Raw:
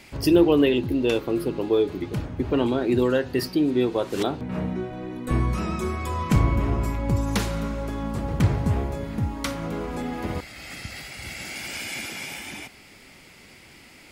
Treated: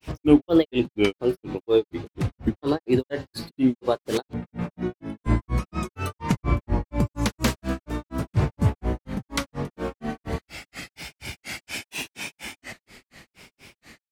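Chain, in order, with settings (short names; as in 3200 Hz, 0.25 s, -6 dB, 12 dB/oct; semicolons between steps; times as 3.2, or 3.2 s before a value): grains 0.181 s, grains 4.2/s, pitch spread up and down by 3 st; gain +3.5 dB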